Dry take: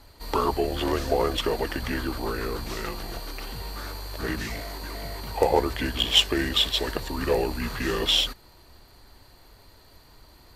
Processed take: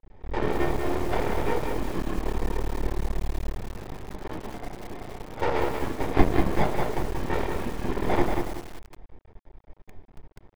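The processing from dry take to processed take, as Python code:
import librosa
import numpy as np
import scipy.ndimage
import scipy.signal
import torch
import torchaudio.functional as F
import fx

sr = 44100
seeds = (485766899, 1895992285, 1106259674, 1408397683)

y = fx.low_shelf(x, sr, hz=100.0, db=-12.0, at=(4.02, 6.23), fade=0.02)
y = fx.sample_hold(y, sr, seeds[0], rate_hz=1400.0, jitter_pct=0)
y = fx.room_shoebox(y, sr, seeds[1], volume_m3=210.0, walls='furnished', distance_m=4.2)
y = np.maximum(y, 0.0)
y = scipy.signal.sosfilt(scipy.signal.bessel(2, 2200.0, 'lowpass', norm='mag', fs=sr, output='sos'), y)
y = fx.echo_crushed(y, sr, ms=189, feedback_pct=35, bits=5, wet_db=-5)
y = y * librosa.db_to_amplitude(-8.0)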